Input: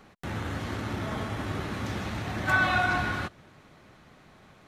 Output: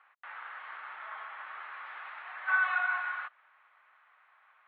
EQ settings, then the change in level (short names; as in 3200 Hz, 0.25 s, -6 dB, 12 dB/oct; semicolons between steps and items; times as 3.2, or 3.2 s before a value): Gaussian blur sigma 3.5 samples; HPF 1100 Hz 24 dB/oct; air absorption 240 m; +2.0 dB